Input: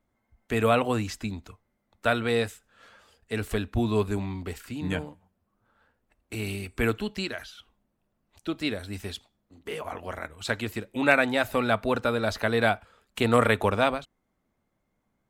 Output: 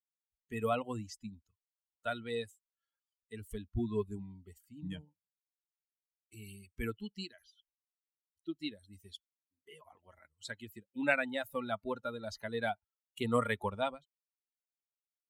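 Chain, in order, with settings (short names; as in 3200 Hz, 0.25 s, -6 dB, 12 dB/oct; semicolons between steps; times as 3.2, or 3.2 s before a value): per-bin expansion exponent 2; gain -6.5 dB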